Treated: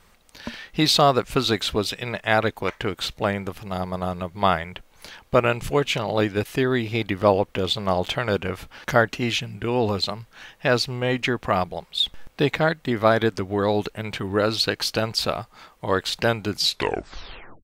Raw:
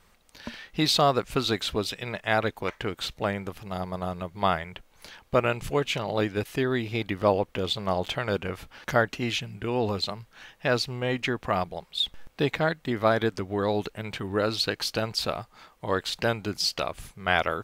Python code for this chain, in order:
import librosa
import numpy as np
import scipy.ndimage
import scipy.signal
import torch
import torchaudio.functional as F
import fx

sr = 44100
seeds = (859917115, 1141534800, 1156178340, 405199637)

y = fx.tape_stop_end(x, sr, length_s=1.06)
y = F.gain(torch.from_numpy(y), 4.5).numpy()